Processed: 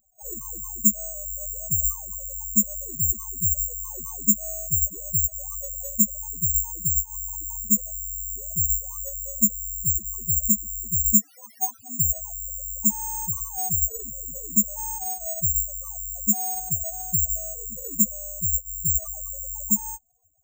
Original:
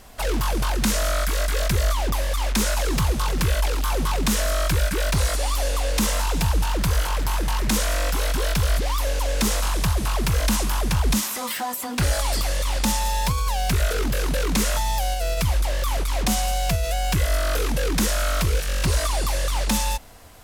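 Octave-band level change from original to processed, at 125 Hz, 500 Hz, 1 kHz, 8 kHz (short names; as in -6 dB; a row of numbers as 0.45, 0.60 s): -10.5, -17.0, -14.0, +5.0 dB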